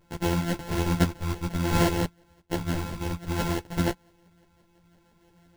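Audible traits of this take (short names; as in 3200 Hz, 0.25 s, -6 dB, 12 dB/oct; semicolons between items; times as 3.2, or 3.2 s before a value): a buzz of ramps at a fixed pitch in blocks of 256 samples; phasing stages 4, 0.58 Hz, lowest notch 690–1600 Hz; aliases and images of a low sample rate 1200 Hz, jitter 0%; a shimmering, thickened sound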